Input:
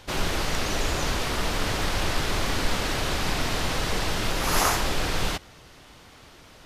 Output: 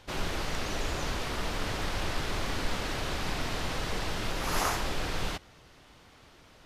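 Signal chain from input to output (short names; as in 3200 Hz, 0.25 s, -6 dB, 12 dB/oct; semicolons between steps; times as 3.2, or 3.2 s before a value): high shelf 5900 Hz -4.5 dB; gain -6 dB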